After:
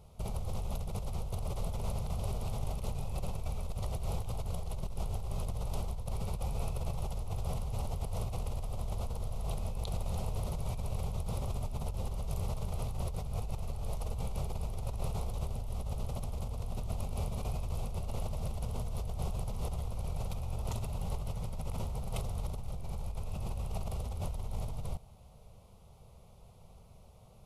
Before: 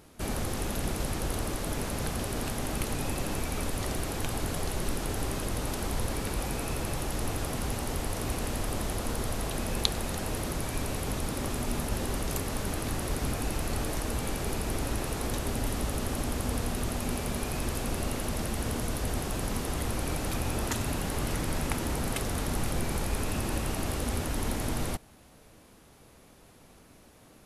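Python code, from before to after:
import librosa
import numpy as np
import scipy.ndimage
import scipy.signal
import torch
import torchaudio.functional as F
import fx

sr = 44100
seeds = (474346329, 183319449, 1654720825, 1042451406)

y = fx.bass_treble(x, sr, bass_db=8, treble_db=-8)
y = fx.over_compress(y, sr, threshold_db=-28.0, ratio=-1.0)
y = fx.fixed_phaser(y, sr, hz=700.0, stages=4)
y = y * librosa.db_to_amplitude(-5.5)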